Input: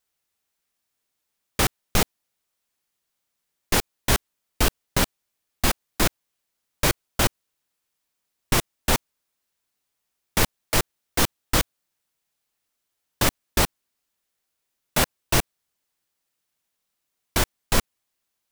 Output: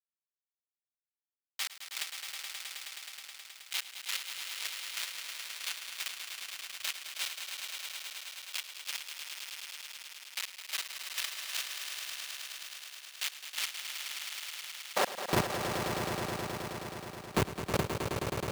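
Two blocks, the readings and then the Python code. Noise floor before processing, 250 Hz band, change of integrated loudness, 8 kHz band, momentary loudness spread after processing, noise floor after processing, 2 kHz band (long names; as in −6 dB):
−80 dBFS, −10.5 dB, −12.0 dB, −10.5 dB, 9 LU, below −85 dBFS, −8.5 dB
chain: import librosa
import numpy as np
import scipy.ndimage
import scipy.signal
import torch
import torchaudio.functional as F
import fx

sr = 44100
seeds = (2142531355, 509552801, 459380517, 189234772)

p1 = x + 0.93 * np.pad(x, (int(5.2 * sr / 1000.0), 0))[:len(x)]
p2 = fx.level_steps(p1, sr, step_db=12)
p3 = p1 + (p2 * 10.0 ** (-0.5 / 20.0))
p4 = fx.schmitt(p3, sr, flips_db=-11.0)
p5 = fx.filter_sweep_highpass(p4, sr, from_hz=2900.0, to_hz=87.0, start_s=14.67, end_s=15.38, q=1.2)
p6 = p5 + fx.echo_swell(p5, sr, ms=106, loudest=5, wet_db=-8.0, dry=0)
y = p6 * 10.0 ** (-2.5 / 20.0)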